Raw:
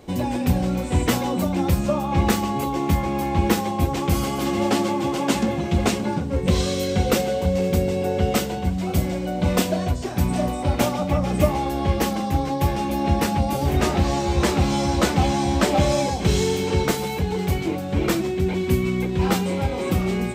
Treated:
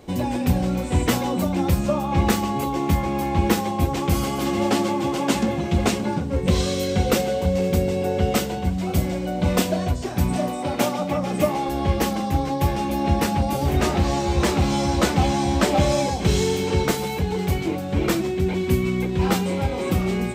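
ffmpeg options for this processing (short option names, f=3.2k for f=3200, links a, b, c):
-filter_complex "[0:a]asettb=1/sr,asplit=3[a][b][c];[a]atrim=end=10.374[d];[b]atrim=start=10.37:end=11.69,asetpts=PTS-STARTPTS,afade=t=in:d=0.004:c=qsin,afade=t=out:st=1.316:d=0.004:c=qsin,highpass=170[e];[c]atrim=start=11.686[f];[d][e]acrossfade=d=0.004:c1=hsin:c2=qsin[g];[g][f]acrossfade=d=0.004:c1=qsin:c2=hsin,asettb=1/sr,asplit=3[h][i][j];[h]atrim=end=13.334[k];[i]atrim=start=13.33:end=15.03,asetpts=PTS-STARTPTS,afade=t=in:d=0.004:c=qsin,afade=t=out:st=1.696:d=0.004:c=qsin,asoftclip=type=hard:threshold=-12dB[l];[j]atrim=start=15.026[m];[k][l]acrossfade=d=0.004:c1=hsin:c2=qsin[n];[n][m]acrossfade=d=0.004:c1=qsin:c2=hsin"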